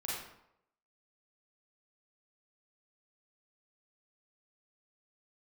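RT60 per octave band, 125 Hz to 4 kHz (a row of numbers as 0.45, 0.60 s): 0.70, 0.70, 0.80, 0.80, 0.65, 0.50 s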